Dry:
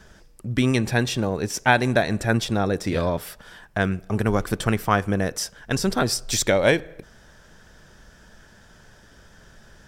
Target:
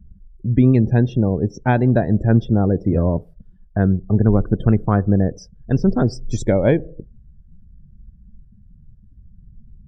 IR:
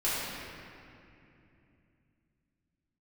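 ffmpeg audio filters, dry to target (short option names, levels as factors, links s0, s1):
-af "tiltshelf=f=660:g=10,afftdn=nr=33:nf=-33"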